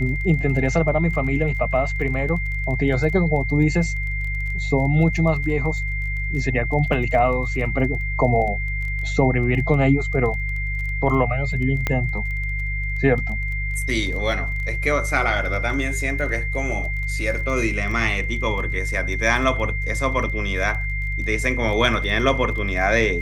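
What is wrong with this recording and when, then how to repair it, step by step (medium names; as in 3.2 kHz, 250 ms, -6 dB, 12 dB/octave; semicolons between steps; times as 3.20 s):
crackle 21 per s -30 dBFS
hum 50 Hz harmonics 3 -26 dBFS
whine 2.1 kHz -27 dBFS
11.87 s: pop -8 dBFS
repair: de-click; band-stop 2.1 kHz, Q 30; de-hum 50 Hz, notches 3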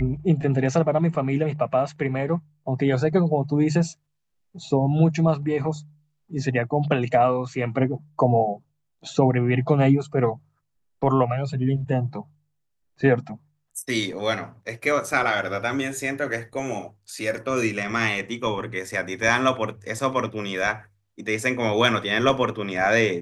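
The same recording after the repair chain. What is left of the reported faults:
nothing left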